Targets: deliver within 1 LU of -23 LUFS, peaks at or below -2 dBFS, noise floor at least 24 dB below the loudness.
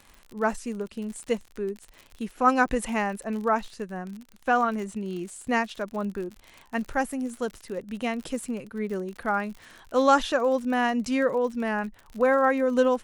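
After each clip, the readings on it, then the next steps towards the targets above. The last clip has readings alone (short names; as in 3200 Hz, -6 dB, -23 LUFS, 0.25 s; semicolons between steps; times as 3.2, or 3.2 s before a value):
ticks 54/s; loudness -27.0 LUFS; peak -8.0 dBFS; loudness target -23.0 LUFS
-> de-click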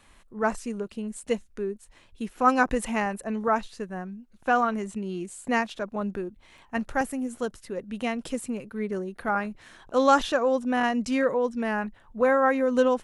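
ticks 0.15/s; loudness -27.0 LUFS; peak -8.0 dBFS; loudness target -23.0 LUFS
-> gain +4 dB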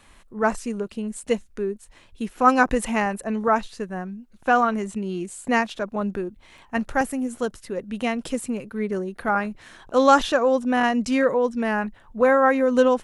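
loudness -23.0 LUFS; peak -4.0 dBFS; noise floor -53 dBFS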